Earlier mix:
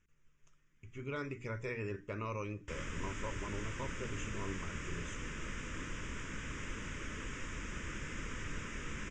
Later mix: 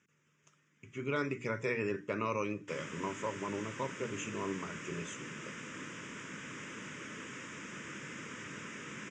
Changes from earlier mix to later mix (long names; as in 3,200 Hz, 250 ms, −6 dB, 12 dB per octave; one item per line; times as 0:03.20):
speech +6.5 dB
master: add high-pass filter 140 Hz 24 dB per octave